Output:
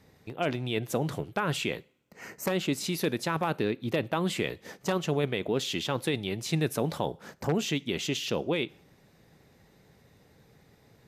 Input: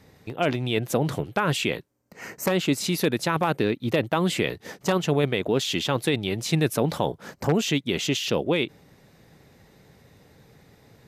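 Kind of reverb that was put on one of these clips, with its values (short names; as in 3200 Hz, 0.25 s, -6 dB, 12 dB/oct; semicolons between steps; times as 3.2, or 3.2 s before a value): two-slope reverb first 0.49 s, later 1.9 s, from -27 dB, DRR 19.5 dB; gain -5.5 dB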